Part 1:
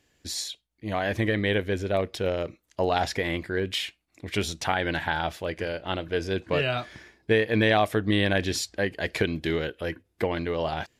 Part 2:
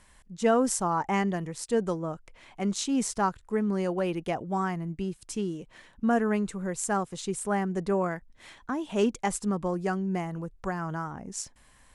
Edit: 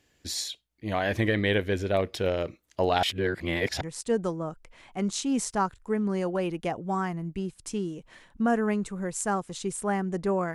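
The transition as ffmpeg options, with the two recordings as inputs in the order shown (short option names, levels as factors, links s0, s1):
-filter_complex "[0:a]apad=whole_dur=10.54,atrim=end=10.54,asplit=2[s0][s1];[s0]atrim=end=3.032[s2];[s1]atrim=start=3.028:end=3.812,asetpts=PTS-STARTPTS,areverse[s3];[1:a]atrim=start=1.438:end=8.17[s4];[s2][s3]acrossfade=d=0.004:c1=hsin:c2=hsin[s5];[s5][s4]acrossfade=d=0.004:c1=hsin:c2=hsin"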